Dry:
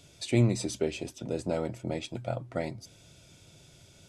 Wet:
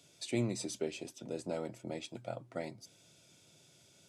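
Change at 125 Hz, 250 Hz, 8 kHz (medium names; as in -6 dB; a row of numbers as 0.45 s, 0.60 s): -13.0 dB, -8.0 dB, -4.5 dB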